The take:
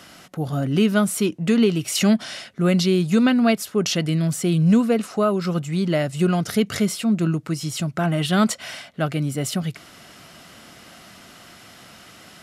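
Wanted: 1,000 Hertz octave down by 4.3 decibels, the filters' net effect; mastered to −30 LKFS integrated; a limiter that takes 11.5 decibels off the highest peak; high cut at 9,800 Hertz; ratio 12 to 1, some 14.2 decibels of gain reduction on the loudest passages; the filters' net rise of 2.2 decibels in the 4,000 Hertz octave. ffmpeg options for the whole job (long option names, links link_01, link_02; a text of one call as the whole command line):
ffmpeg -i in.wav -af "lowpass=9800,equalizer=frequency=1000:width_type=o:gain=-7,equalizer=frequency=4000:width_type=o:gain=3.5,acompressor=threshold=-28dB:ratio=12,volume=7.5dB,alimiter=limit=-21.5dB:level=0:latency=1" out.wav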